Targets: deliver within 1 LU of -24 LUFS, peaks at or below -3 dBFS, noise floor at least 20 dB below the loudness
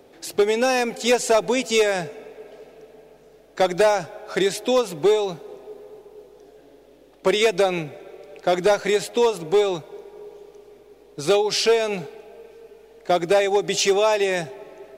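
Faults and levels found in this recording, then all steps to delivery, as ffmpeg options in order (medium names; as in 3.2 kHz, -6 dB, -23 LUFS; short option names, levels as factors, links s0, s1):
loudness -21.0 LUFS; peak level -10.5 dBFS; loudness target -24.0 LUFS
-> -af "volume=0.708"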